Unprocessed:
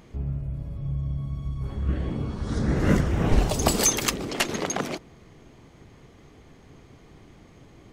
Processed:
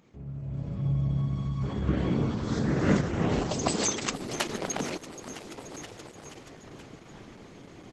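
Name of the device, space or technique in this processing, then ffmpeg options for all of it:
video call: -filter_complex "[0:a]asplit=6[a][b][c][d][e][f];[b]adelay=478,afreqshift=52,volume=-17dB[g];[c]adelay=956,afreqshift=104,volume=-21.7dB[h];[d]adelay=1434,afreqshift=156,volume=-26.5dB[i];[e]adelay=1912,afreqshift=208,volume=-31.2dB[j];[f]adelay=2390,afreqshift=260,volume=-35.9dB[k];[a][g][h][i][j][k]amix=inputs=6:normalize=0,highpass=120,dynaudnorm=f=330:g=3:m=14dB,volume=-8.5dB" -ar 48000 -c:a libopus -b:a 12k

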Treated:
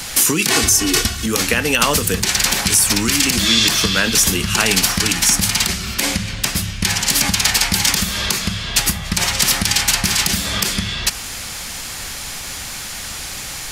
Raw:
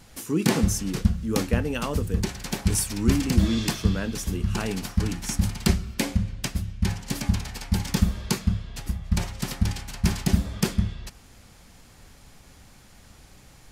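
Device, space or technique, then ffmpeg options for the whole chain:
mastering chain: -filter_complex "[0:a]asettb=1/sr,asplit=3[a][b][c];[a]atrim=end=0.504[d];[b]atrim=start=0.5:end=1.26,asetpts=PTS-STARTPTS,afade=t=in:d=0.004:c=qsin,afade=t=out:st=0.756:d=0.004:c=qsin,aecho=1:1:2.7:0.95,atrim=end_sample=33516[e];[c]atrim=start=1.256[f];[d][e]acrossfade=d=0.004:c1=hsin:c2=qsin[g];[g][f]acrossfade=d=0.004:c1=qsin:c2=hsin,equalizer=f=840:t=o:w=2.9:g=-2.5,acrossover=split=110|1500[h][i][j];[h]acompressor=threshold=-38dB:ratio=4[k];[i]acompressor=threshold=-31dB:ratio=4[l];[j]acompressor=threshold=-35dB:ratio=4[m];[k][l][m]amix=inputs=3:normalize=0,acompressor=threshold=-33dB:ratio=3,tiltshelf=f=640:g=-8,alimiter=level_in=22dB:limit=-1dB:release=50:level=0:latency=1,volume=-1dB"

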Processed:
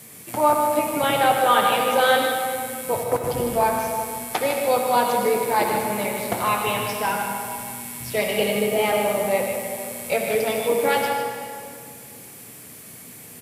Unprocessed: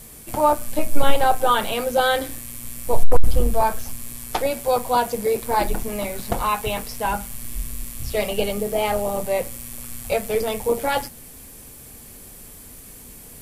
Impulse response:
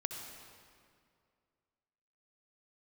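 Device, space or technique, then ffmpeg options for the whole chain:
PA in a hall: -filter_complex "[0:a]highpass=f=110:w=0.5412,highpass=f=110:w=1.3066,equalizer=f=2.1k:t=o:w=0.73:g=5,aecho=1:1:153:0.376[a];[1:a]atrim=start_sample=2205[b];[a][b]afir=irnorm=-1:irlink=0"

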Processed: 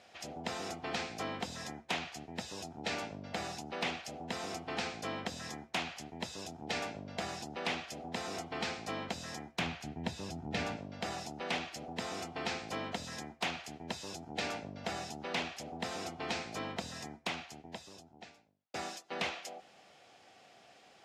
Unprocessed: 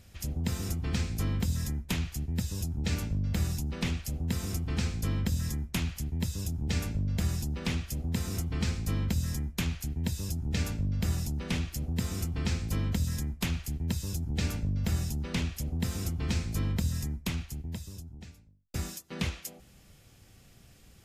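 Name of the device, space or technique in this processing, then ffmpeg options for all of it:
intercom: -filter_complex "[0:a]highpass=430,lowpass=4.5k,equalizer=f=730:t=o:w=0.51:g=10.5,asoftclip=type=tanh:threshold=-27.5dB,asettb=1/sr,asplit=3[a][b][c];[a]atrim=end=9.594[d];[b]atrim=start=9.59:end=10.77,asetpts=PTS-STARTPTS,afade=t=in:d=0.004:c=qsin,afade=t=out:st=1.176:d=0.004:c=qsin,bass=f=250:g=9,treble=f=4k:g=-4[e];[c]atrim=start=10.766[f];[d][e]acrossfade=d=0.004:c1=hsin:c2=qsin[g];[g][f]acrossfade=d=0.004:c1=qsin:c2=hsin,volume=3dB"

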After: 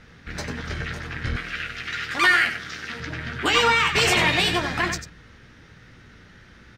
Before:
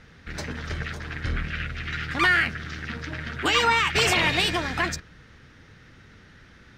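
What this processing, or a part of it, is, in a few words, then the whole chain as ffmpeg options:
slapback doubling: -filter_complex "[0:a]asplit=3[a][b][c];[b]adelay=17,volume=-8dB[d];[c]adelay=95,volume=-9dB[e];[a][d][e]amix=inputs=3:normalize=0,asettb=1/sr,asplit=3[f][g][h];[f]atrim=end=1.364[i];[g]atrim=start=1.36:end=3,asetpts=PTS-STARTPTS,afade=t=in:d=0.004:c=qsin,afade=t=out:st=1.636:d=0.004:c=qsin,bass=f=250:g=-12,treble=f=4k:g=6[j];[h]atrim=start=2.996[k];[i][j]acrossfade=d=0.004:c1=hsin:c2=qsin[l];[l][k]acrossfade=d=0.004:c1=qsin:c2=hsin,volume=1dB"

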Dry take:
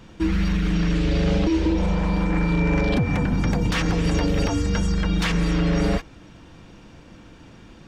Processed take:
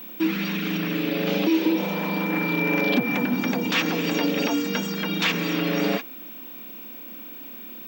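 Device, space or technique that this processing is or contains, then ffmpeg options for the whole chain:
old television with a line whistle: -filter_complex "[0:a]asettb=1/sr,asplit=3[a][b][c];[a]atrim=end=0.774[d];[b]atrim=start=0.77:end=1.27,asetpts=PTS-STARTPTS,afade=t=in:d=0.004:c=qsin,afade=t=out:st=0.496:d=0.004:c=qsin,acrossover=split=2900[e][f];[f]acompressor=threshold=-44dB:ratio=4:attack=1:release=60[g];[e][g]amix=inputs=2:normalize=0[h];[c]atrim=start=1.266[i];[d][h]acrossfade=d=0.004:c1=hsin:c2=qsin[j];[j][i]acrossfade=d=0.004:c1=qsin:c2=hsin,highpass=f=220:w=0.5412,highpass=f=220:w=1.3066,equalizer=f=240:t=q:w=4:g=7,equalizer=f=2.5k:t=q:w=4:g=7,equalizer=f=3.5k:t=q:w=4:g=5,lowpass=f=7.5k:w=0.5412,lowpass=f=7.5k:w=1.3066,aeval=exprs='val(0)+0.0141*sin(2*PI*15734*n/s)':c=same"

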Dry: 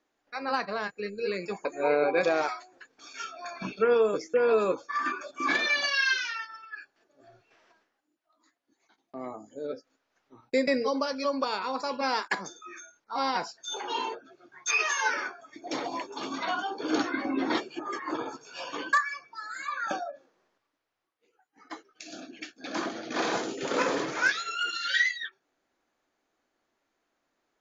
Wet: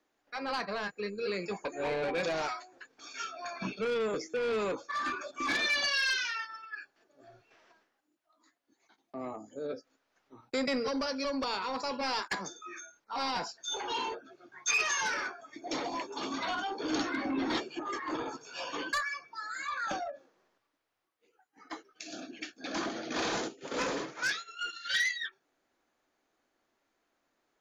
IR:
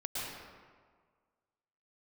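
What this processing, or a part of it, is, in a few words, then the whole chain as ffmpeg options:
one-band saturation: -filter_complex "[0:a]asplit=3[a][b][c];[a]afade=t=out:st=23.47:d=0.02[d];[b]agate=range=-33dB:threshold=-24dB:ratio=3:detection=peak,afade=t=in:st=23.47:d=0.02,afade=t=out:st=24.89:d=0.02[e];[c]afade=t=in:st=24.89:d=0.02[f];[d][e][f]amix=inputs=3:normalize=0,acrossover=split=210|2700[g][h][i];[h]asoftclip=type=tanh:threshold=-30.5dB[j];[g][j][i]amix=inputs=3:normalize=0"

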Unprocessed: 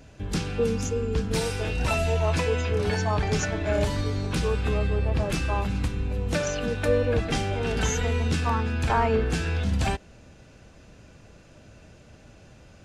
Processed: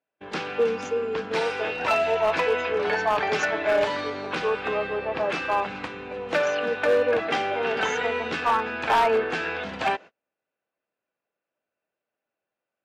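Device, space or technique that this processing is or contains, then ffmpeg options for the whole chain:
walkie-talkie: -filter_complex "[0:a]asettb=1/sr,asplit=3[a][b][c];[a]atrim=end=3.154[d];[b]atrim=start=3.15:end=4.1,asetpts=PTS-STARTPTS,afade=t=in:d=0.004:c=qsin,afade=t=out:st=0.946:d=0.004:c=qsin,highshelf=f=2.5k:g=3.5[e];[c]atrim=start=4.096[f];[d][e]acrossfade=d=0.004:c1=hsin:c2=qsin[g];[g][f]acrossfade=d=0.004:c1=qsin:c2=hsin,highpass=520,lowpass=2.5k,asoftclip=type=hard:threshold=-23dB,agate=range=-36dB:threshold=-47dB:ratio=16:detection=peak,volume=7.5dB"

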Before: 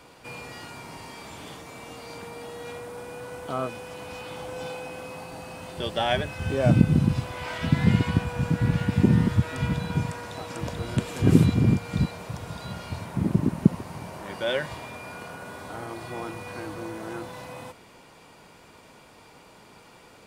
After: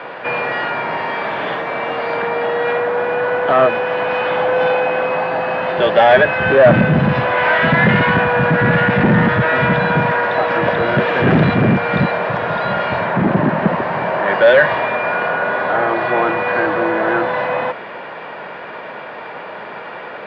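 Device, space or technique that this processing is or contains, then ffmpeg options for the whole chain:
overdrive pedal into a guitar cabinet: -filter_complex "[0:a]asplit=2[a][b];[b]highpass=f=720:p=1,volume=32dB,asoftclip=type=tanh:threshold=-1.5dB[c];[a][c]amix=inputs=2:normalize=0,lowpass=f=1.1k:p=1,volume=-6dB,highpass=90,equalizer=f=94:t=q:w=4:g=-5,equalizer=f=280:t=q:w=4:g=-5,equalizer=f=600:t=q:w=4:g=5,equalizer=f=1.7k:t=q:w=4:g=9,lowpass=f=3.5k:w=0.5412,lowpass=f=3.5k:w=1.3066"

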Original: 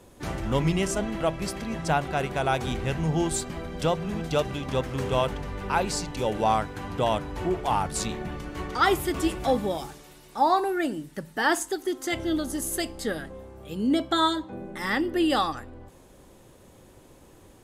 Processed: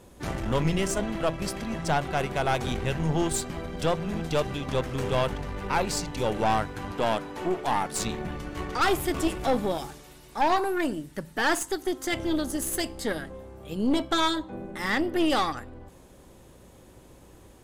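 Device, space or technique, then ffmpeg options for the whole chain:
valve amplifier with mains hum: -filter_complex "[0:a]asettb=1/sr,asplit=3[a][b][c];[a]atrim=end=6.924[d];[b]atrim=start=6.92:end=7.99,asetpts=PTS-STARTPTS,afade=t=in:d=0.004:c=qsin,afade=t=out:st=1.066:d=0.004:c=qsin,highpass=210[e];[c]atrim=start=7.986[f];[d][e]acrossfade=d=0.004:c1=hsin:c2=qsin[g];[g][f]acrossfade=d=0.004:c1=qsin:c2=hsin,aeval=exprs='(tanh(11.2*val(0)+0.6)-tanh(0.6))/11.2':c=same,aeval=exprs='val(0)+0.001*(sin(2*PI*60*n/s)+sin(2*PI*2*60*n/s)/2+sin(2*PI*3*60*n/s)/3+sin(2*PI*4*60*n/s)/4+sin(2*PI*5*60*n/s)/5)':c=same,volume=3dB"

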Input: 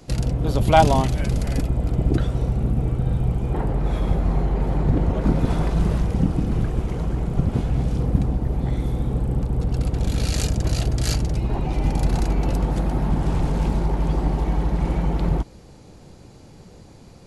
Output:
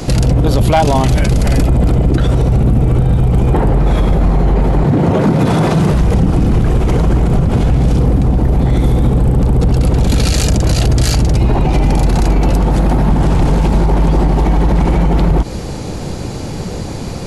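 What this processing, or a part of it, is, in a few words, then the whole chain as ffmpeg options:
loud club master: -filter_complex "[0:a]asettb=1/sr,asplit=3[a][b][c];[a]atrim=end=4.844[d];[b]atrim=start=4.84:end=5.92,asetpts=PTS-STARTPTS,afade=t=in:d=0.004:c=qsin,afade=t=out:st=1.076:d=0.004:c=qsin,highpass=f=97:w=0.5412,highpass=f=97:w=1.3066[e];[c]atrim=start=5.916[f];[d][e]acrossfade=d=0.004:c1=hsin:c2=qsin[g];[g][f]acrossfade=d=0.004:c1=qsin:c2=hsin,acompressor=threshold=-22dB:ratio=2.5,asoftclip=type=hard:threshold=-16dB,alimiter=level_in=26.5dB:limit=-1dB:release=50:level=0:latency=1,volume=-3.5dB"

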